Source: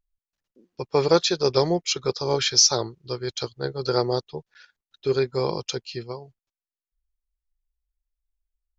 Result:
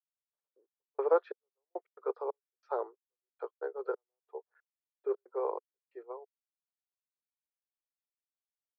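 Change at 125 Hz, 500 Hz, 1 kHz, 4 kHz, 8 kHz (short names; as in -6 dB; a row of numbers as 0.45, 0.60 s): under -40 dB, -10.5 dB, -10.0 dB, under -40 dB, n/a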